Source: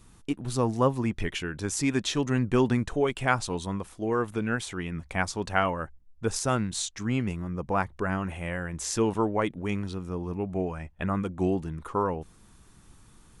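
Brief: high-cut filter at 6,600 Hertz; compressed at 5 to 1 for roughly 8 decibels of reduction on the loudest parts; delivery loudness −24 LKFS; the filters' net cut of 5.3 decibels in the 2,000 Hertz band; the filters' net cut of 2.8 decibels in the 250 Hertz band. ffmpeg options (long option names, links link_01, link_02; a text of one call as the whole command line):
ffmpeg -i in.wav -af "lowpass=6600,equalizer=frequency=250:width_type=o:gain=-3.5,equalizer=frequency=2000:width_type=o:gain=-7.5,acompressor=threshold=-29dB:ratio=5,volume=11.5dB" out.wav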